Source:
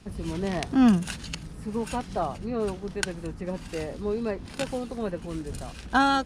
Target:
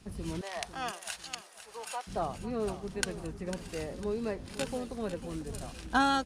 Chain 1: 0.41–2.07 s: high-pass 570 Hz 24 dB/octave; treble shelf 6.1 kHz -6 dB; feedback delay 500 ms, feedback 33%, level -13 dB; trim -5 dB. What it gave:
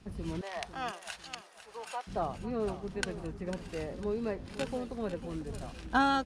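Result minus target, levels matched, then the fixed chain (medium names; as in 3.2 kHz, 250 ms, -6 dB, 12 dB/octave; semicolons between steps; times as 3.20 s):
8 kHz band -7.0 dB
0.41–2.07 s: high-pass 570 Hz 24 dB/octave; treble shelf 6.1 kHz +6 dB; feedback delay 500 ms, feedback 33%, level -13 dB; trim -5 dB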